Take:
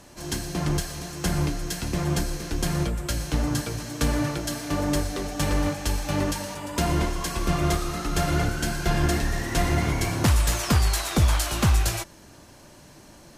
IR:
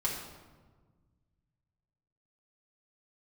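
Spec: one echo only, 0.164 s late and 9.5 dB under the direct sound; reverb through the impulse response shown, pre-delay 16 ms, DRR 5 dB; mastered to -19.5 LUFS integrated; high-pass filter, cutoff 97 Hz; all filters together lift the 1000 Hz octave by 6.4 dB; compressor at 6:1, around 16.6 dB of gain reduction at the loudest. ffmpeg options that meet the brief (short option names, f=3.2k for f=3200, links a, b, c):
-filter_complex "[0:a]highpass=97,equalizer=f=1k:t=o:g=8.5,acompressor=threshold=-35dB:ratio=6,aecho=1:1:164:0.335,asplit=2[a][b];[1:a]atrim=start_sample=2205,adelay=16[c];[b][c]afir=irnorm=-1:irlink=0,volume=-10dB[d];[a][d]amix=inputs=2:normalize=0,volume=16.5dB"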